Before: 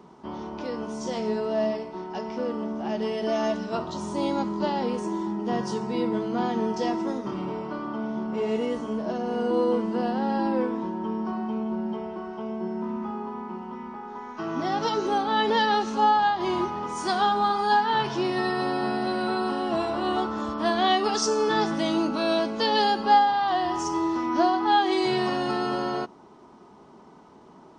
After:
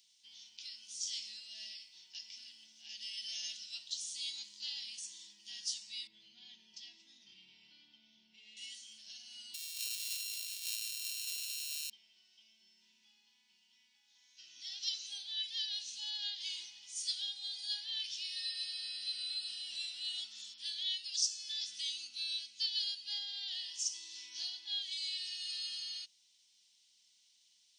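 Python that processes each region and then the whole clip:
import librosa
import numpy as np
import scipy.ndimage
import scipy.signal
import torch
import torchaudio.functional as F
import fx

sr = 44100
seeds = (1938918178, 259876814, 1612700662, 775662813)

y = fx.chain(x, sr, fx.lowpass(hz=2200.0, slope=12),
    fx.peak_eq(hz=1400.0, db=-9.5, octaves=1.9),
    fx.env_flatten(amount_pct=70), at=(6.07, 8.57))
y = fx.chain(y, sr, fx.sample_sort(block=32),
    fx.over_compress(threshold_db=-28.0, ratio=-0.5),
    fx.peak_eq(hz=330.0, db=-8.5, octaves=1.7), at=(9.54, 11.9))
y = scipy.signal.sosfilt(scipy.signal.cheby2(4, 50, 1300.0, 'highpass', fs=sr, output='sos'), y)
y = fx.rider(y, sr, range_db=4, speed_s=0.5)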